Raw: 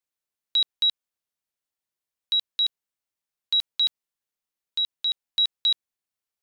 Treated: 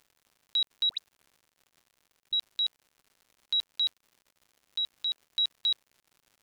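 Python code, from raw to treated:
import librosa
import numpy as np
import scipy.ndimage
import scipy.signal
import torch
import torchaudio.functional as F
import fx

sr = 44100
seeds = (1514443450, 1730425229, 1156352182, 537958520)

y = fx.dispersion(x, sr, late='highs', ms=92.0, hz=1700.0, at=(0.89, 2.33))
y = fx.dmg_crackle(y, sr, seeds[0], per_s=170.0, level_db=-44.0)
y = F.gain(torch.from_numpy(y), -5.5).numpy()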